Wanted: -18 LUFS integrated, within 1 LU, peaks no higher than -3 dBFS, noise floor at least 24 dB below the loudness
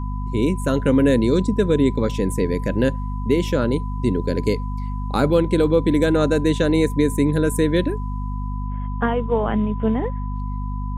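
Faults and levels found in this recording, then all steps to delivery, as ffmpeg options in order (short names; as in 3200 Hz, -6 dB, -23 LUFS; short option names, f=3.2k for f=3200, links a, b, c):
hum 50 Hz; harmonics up to 250 Hz; hum level -23 dBFS; steady tone 1000 Hz; tone level -36 dBFS; loudness -20.5 LUFS; peak -6.0 dBFS; loudness target -18.0 LUFS
-> -af "bandreject=f=50:t=h:w=4,bandreject=f=100:t=h:w=4,bandreject=f=150:t=h:w=4,bandreject=f=200:t=h:w=4,bandreject=f=250:t=h:w=4"
-af "bandreject=f=1k:w=30"
-af "volume=2.5dB"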